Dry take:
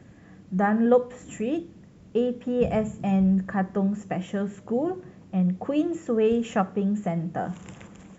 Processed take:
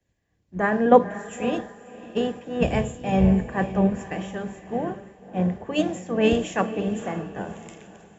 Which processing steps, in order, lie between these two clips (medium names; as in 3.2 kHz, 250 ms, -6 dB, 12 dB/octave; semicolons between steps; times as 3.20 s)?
spectral peaks clipped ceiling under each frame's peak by 13 dB; band-stop 1.3 kHz, Q 5.7; echo that smears into a reverb 549 ms, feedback 55%, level -8.5 dB; three bands expanded up and down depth 100%